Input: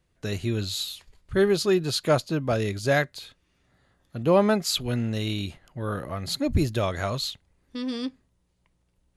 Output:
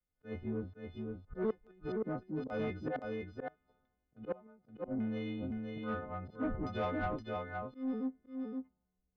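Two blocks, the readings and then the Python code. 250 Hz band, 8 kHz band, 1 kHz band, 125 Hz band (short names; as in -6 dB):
-10.0 dB, under -40 dB, -10.5 dB, -16.0 dB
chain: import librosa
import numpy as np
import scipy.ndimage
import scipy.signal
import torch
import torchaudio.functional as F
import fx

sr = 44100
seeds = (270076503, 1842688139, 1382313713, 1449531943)

y = fx.freq_snap(x, sr, grid_st=3)
y = fx.spec_box(y, sr, start_s=2.02, length_s=0.35, low_hz=370.0, high_hz=3600.0, gain_db=-12)
y = fx.dynamic_eq(y, sr, hz=140.0, q=1.7, threshold_db=-41.0, ratio=4.0, max_db=-7)
y = y + 0.48 * np.pad(y, (int(4.2 * sr / 1000.0), 0))[:len(y)]
y = fx.auto_swell(y, sr, attack_ms=110.0)
y = fx.gate_flip(y, sr, shuts_db=-14.0, range_db=-29)
y = fx.spacing_loss(y, sr, db_at_10k=40)
y = fx.filter_lfo_lowpass(y, sr, shape='saw_down', hz=1.2, low_hz=540.0, high_hz=4400.0, q=0.88)
y = y + 10.0 ** (-3.5 / 20.0) * np.pad(y, (int(519 * sr / 1000.0), 0))[:len(y)]
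y = 10.0 ** (-22.5 / 20.0) * np.tanh(y / 10.0 ** (-22.5 / 20.0))
y = fx.band_widen(y, sr, depth_pct=40)
y = y * 10.0 ** (-5.5 / 20.0)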